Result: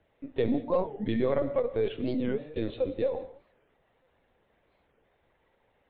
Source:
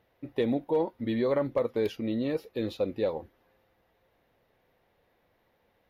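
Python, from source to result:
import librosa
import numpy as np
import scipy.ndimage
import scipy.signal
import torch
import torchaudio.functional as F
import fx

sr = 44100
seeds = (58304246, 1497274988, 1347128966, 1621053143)

y = fx.lpc_vocoder(x, sr, seeds[0], excitation='pitch_kept', order=16)
y = fx.rev_gated(y, sr, seeds[1], gate_ms=220, shape='flat', drr_db=11.0)
y = fx.record_warp(y, sr, rpm=45.0, depth_cents=250.0)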